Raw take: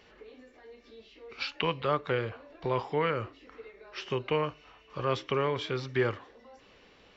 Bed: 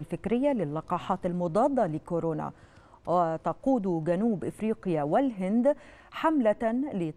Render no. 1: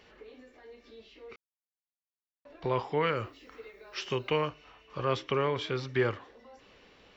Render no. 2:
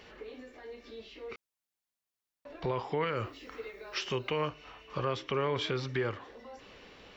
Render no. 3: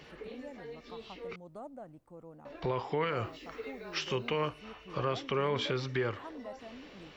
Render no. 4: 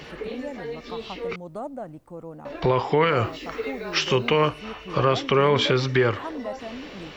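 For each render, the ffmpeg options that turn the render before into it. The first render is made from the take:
ffmpeg -i in.wav -filter_complex "[0:a]asettb=1/sr,asplit=3[link_01][link_02][link_03];[link_01]atrim=end=3.034[link_04];[link_02]atrim=start=3.03:end=4.49,asetpts=PTS-STARTPTS,afade=type=in:duration=0.004:curve=qsin,afade=type=out:start_time=1.456:duration=0.004:curve=qsin,aemphasis=mode=production:type=50fm[link_05];[link_03]atrim=start=4.486[link_06];[link_04][link_05]acrossfade=duration=0.004:curve1=hsin:curve2=qsin[link_07];[link_07][link_06]acrossfade=duration=0.004:curve1=qsin:curve2=hsin,asplit=3[link_08][link_09][link_10];[link_08]atrim=end=1.36,asetpts=PTS-STARTPTS,afade=type=out:start_time=1.356:duration=0.004:curve=hsin[link_11];[link_09]atrim=start=1.36:end=2.45,asetpts=PTS-STARTPTS,volume=0[link_12];[link_10]atrim=start=2.45,asetpts=PTS-STARTPTS,afade=type=in:duration=0.004:curve=hsin[link_13];[link_11][link_12][link_13]concat=n=3:v=0:a=1" out.wav
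ffmpeg -i in.wav -af "acontrast=23,alimiter=limit=-22dB:level=0:latency=1:release=244" out.wav
ffmpeg -i in.wav -i bed.wav -filter_complex "[1:a]volume=-21.5dB[link_01];[0:a][link_01]amix=inputs=2:normalize=0" out.wav
ffmpeg -i in.wav -af "volume=12dB" out.wav

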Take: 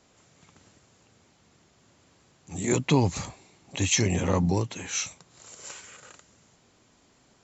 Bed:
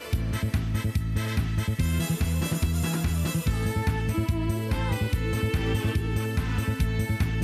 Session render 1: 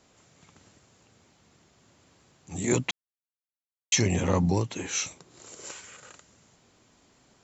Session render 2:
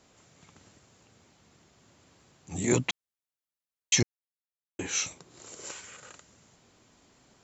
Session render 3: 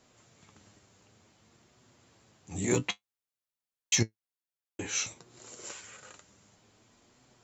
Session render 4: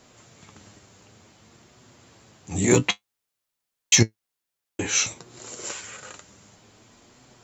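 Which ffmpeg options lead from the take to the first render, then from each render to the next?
ffmpeg -i in.wav -filter_complex "[0:a]asettb=1/sr,asplit=3[link_01][link_02][link_03];[link_01]atrim=end=4.764[link_04];[link_02]atrim=start=4.76:end=5.71,asetpts=PTS-STARTPTS,afade=type=in:duration=0.004:curve=qsin,afade=type=out:start_time=0.946:duration=0.004:curve=qsin,equalizer=frequency=350:width=1.5:gain=8.5[link_05];[link_03]atrim=start=5.706[link_06];[link_04][link_05]acrossfade=duration=0.004:curve1=hsin:curve2=qsin[link_07];[link_07][link_06]acrossfade=duration=0.004:curve1=qsin:curve2=hsin,asplit=3[link_08][link_09][link_10];[link_08]atrim=end=2.91,asetpts=PTS-STARTPTS,afade=type=out:start_time=2.906:duration=0.004:curve=hsin[link_11];[link_09]atrim=start=2.91:end=3.92,asetpts=PTS-STARTPTS,volume=0[link_12];[link_10]atrim=start=3.92,asetpts=PTS-STARTPTS,afade=type=in:duration=0.004:curve=hsin[link_13];[link_11][link_12][link_13]concat=n=3:v=0:a=1" out.wav
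ffmpeg -i in.wav -filter_complex "[0:a]asplit=3[link_01][link_02][link_03];[link_01]atrim=end=4.03,asetpts=PTS-STARTPTS,afade=type=out:start_time=4.026:duration=0.004:curve=hsin[link_04];[link_02]atrim=start=4.03:end=4.79,asetpts=PTS-STARTPTS,volume=0[link_05];[link_03]atrim=start=4.79,asetpts=PTS-STARTPTS,afade=type=in:duration=0.004:curve=hsin[link_06];[link_04][link_05][link_06]concat=n=3:v=0:a=1" out.wav
ffmpeg -i in.wav -filter_complex "[0:a]flanger=delay=8:depth=2.3:regen=55:speed=0.55:shape=triangular,asplit=2[link_01][link_02];[link_02]volume=24dB,asoftclip=hard,volume=-24dB,volume=-11dB[link_03];[link_01][link_03]amix=inputs=2:normalize=0" out.wav
ffmpeg -i in.wav -af "volume=9.5dB" out.wav

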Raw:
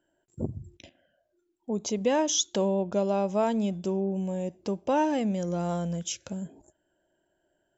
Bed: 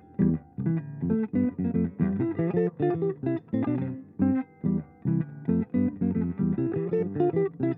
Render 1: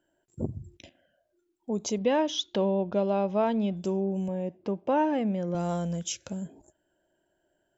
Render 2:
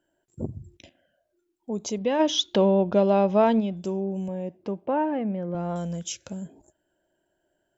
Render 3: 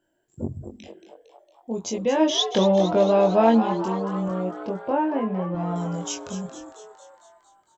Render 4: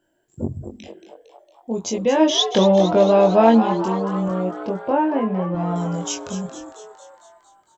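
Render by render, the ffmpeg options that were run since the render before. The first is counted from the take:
ffmpeg -i in.wav -filter_complex "[0:a]asettb=1/sr,asplit=3[link_01][link_02][link_03];[link_01]atrim=end=1.984[link_04];[link_02]atrim=start=1.98:end=3.77,asetpts=PTS-STARTPTS,afade=type=in:duration=0.004:curve=qsin,afade=type=out:start_time=1.786:duration=0.004:curve=qsin,lowpass=frequency=4200:width=0.5412,lowpass=frequency=4200:width=1.3066[link_05];[link_03]atrim=start=3.766[link_06];[link_04][link_05]acrossfade=duration=0.004:curve1=hsin:curve2=qsin[link_07];[link_07][link_06]acrossfade=duration=0.004:curve1=qsin:curve2=hsin,asettb=1/sr,asplit=3[link_08][link_09][link_10];[link_08]atrim=end=4.284[link_11];[link_09]atrim=start=4.28:end=5.55,asetpts=PTS-STARTPTS,afade=type=in:duration=0.004:curve=qsin,afade=type=out:start_time=1.266:duration=0.004:curve=qsin,highpass=110,lowpass=2600[link_12];[link_10]atrim=start=5.546[link_13];[link_11][link_12]acrossfade=duration=0.004:curve1=hsin:curve2=qsin[link_14];[link_14][link_13]acrossfade=duration=0.004:curve1=qsin:curve2=hsin" out.wav
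ffmpeg -i in.wav -filter_complex "[0:a]asplit=3[link_01][link_02][link_03];[link_01]afade=type=out:start_time=2.19:duration=0.02[link_04];[link_02]acontrast=61,afade=type=in:start_time=2.19:duration=0.02,afade=type=out:start_time=3.59:duration=0.02[link_05];[link_03]afade=type=in:start_time=3.59:duration=0.02[link_06];[link_04][link_05][link_06]amix=inputs=3:normalize=0,asettb=1/sr,asplit=3[link_07][link_08][link_09];[link_07]atrim=end=4.864[link_10];[link_08]atrim=start=4.86:end=5.76,asetpts=PTS-STARTPTS,afade=type=in:duration=0.004:curve=qsin,afade=type=out:start_time=0.896:duration=0.004:curve=qsin,lowpass=2300[link_11];[link_09]atrim=start=5.756[link_12];[link_10][link_11]acrossfade=duration=0.004:curve1=hsin:curve2=qsin[link_13];[link_13][link_12]acrossfade=duration=0.004:curve1=qsin:curve2=hsin" out.wav
ffmpeg -i in.wav -filter_complex "[0:a]asplit=2[link_01][link_02];[link_02]adelay=22,volume=-2.5dB[link_03];[link_01][link_03]amix=inputs=2:normalize=0,asplit=8[link_04][link_05][link_06][link_07][link_08][link_09][link_10][link_11];[link_05]adelay=228,afreqshift=120,volume=-11dB[link_12];[link_06]adelay=456,afreqshift=240,volume=-15.3dB[link_13];[link_07]adelay=684,afreqshift=360,volume=-19.6dB[link_14];[link_08]adelay=912,afreqshift=480,volume=-23.9dB[link_15];[link_09]adelay=1140,afreqshift=600,volume=-28.2dB[link_16];[link_10]adelay=1368,afreqshift=720,volume=-32.5dB[link_17];[link_11]adelay=1596,afreqshift=840,volume=-36.8dB[link_18];[link_04][link_12][link_13][link_14][link_15][link_16][link_17][link_18]amix=inputs=8:normalize=0" out.wav
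ffmpeg -i in.wav -af "volume=4dB" out.wav

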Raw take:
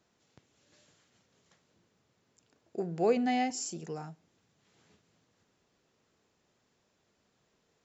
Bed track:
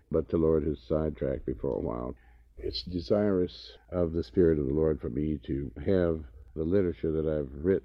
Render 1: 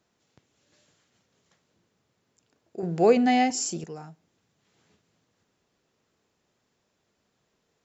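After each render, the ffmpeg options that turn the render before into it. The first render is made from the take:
ffmpeg -i in.wav -filter_complex "[0:a]asplit=3[link_01][link_02][link_03];[link_01]atrim=end=2.832[link_04];[link_02]atrim=start=2.828:end=3.842,asetpts=PTS-STARTPTS,volume=8dB[link_05];[link_03]atrim=start=3.838[link_06];[link_04][link_05]acrossfade=duration=0.004:curve1=hsin:curve2=hsin[link_07];[link_07][link_06]acrossfade=duration=0.004:curve1=hsin:curve2=hsin" out.wav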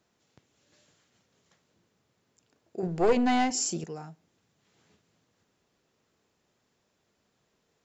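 ffmpeg -i in.wav -filter_complex "[0:a]asettb=1/sr,asplit=3[link_01][link_02][link_03];[link_01]atrim=end=2.874[link_04];[link_02]atrim=start=2.87:end=3.51,asetpts=PTS-STARTPTS,afade=type=in:duration=0.004:curve=qsin,afade=type=out:start_time=0.636:duration=0.004:curve=qsin,aeval=exprs='(tanh(6.31*val(0)+0.6)-tanh(0.6))/6.31':channel_layout=same[link_05];[link_03]atrim=start=3.506[link_06];[link_04][link_05]acrossfade=duration=0.004:curve1=hsin:curve2=qsin[link_07];[link_07][link_06]acrossfade=duration=0.004:curve1=qsin:curve2=hsin" out.wav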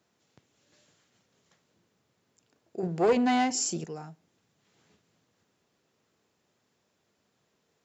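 ffmpeg -i in.wav -af "highpass=77" out.wav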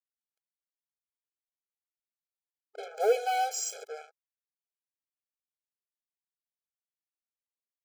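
ffmpeg -i in.wav -af "acrusher=bits=5:mix=0:aa=0.5,afftfilt=real='re*eq(mod(floor(b*sr/1024/430),2),1)':imag='im*eq(mod(floor(b*sr/1024/430),2),1)':win_size=1024:overlap=0.75" out.wav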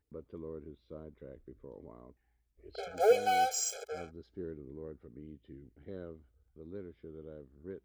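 ffmpeg -i in.wav -i bed.wav -filter_complex "[1:a]volume=-19dB[link_01];[0:a][link_01]amix=inputs=2:normalize=0" out.wav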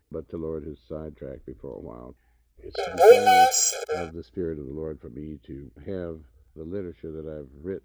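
ffmpeg -i in.wav -af "volume=12dB" out.wav

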